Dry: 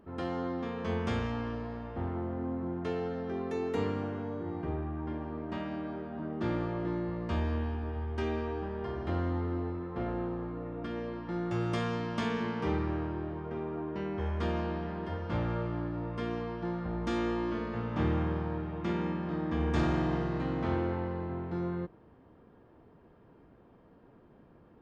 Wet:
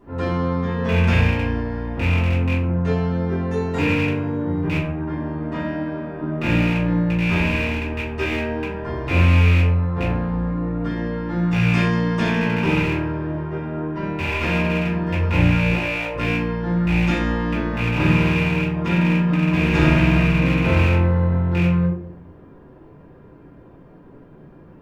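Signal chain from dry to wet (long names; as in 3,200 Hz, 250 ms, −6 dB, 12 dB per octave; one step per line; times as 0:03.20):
loose part that buzzes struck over −32 dBFS, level −22 dBFS
0:15.71–0:16.15: low shelf with overshoot 340 Hz −14 dB, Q 3
convolution reverb RT60 0.55 s, pre-delay 3 ms, DRR −10.5 dB
level −2 dB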